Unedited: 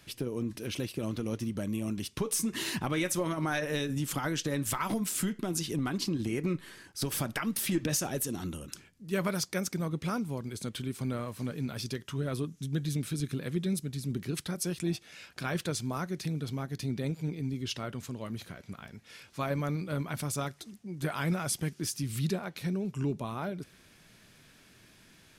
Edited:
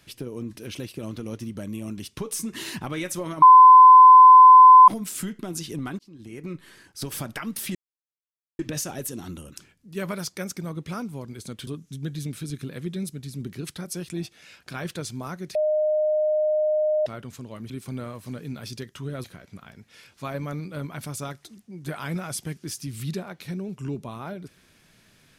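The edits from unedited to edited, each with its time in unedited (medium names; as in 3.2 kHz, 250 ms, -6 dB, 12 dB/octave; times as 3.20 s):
3.42–4.88 s: bleep 1.02 kHz -6 dBFS
5.99–6.77 s: fade in
7.75 s: insert silence 0.84 s
10.83–12.37 s: move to 18.40 s
16.25–17.76 s: bleep 613 Hz -19 dBFS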